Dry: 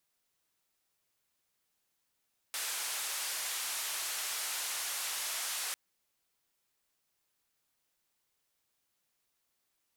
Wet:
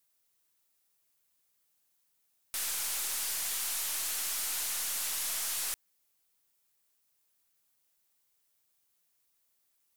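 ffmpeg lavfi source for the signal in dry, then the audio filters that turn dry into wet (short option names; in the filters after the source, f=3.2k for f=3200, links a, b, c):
-f lavfi -i "anoisesrc=c=white:d=3.2:r=44100:seed=1,highpass=f=800,lowpass=f=12000,volume=-29.2dB"
-af "highshelf=f=7.2k:g=10,aeval=exprs='(tanh(17.8*val(0)+0.5)-tanh(0.5))/17.8':c=same"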